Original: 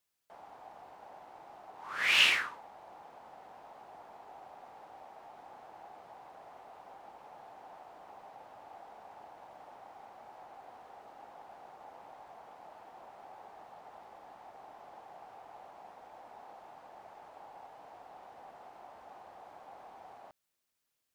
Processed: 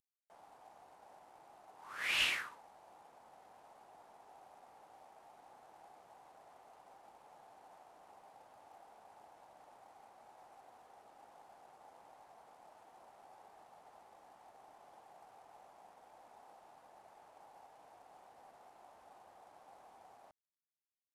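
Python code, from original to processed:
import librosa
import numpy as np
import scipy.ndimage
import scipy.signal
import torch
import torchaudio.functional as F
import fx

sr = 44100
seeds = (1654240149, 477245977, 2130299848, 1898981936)

y = fx.cvsd(x, sr, bps=64000)
y = F.gain(torch.from_numpy(y), -8.0).numpy()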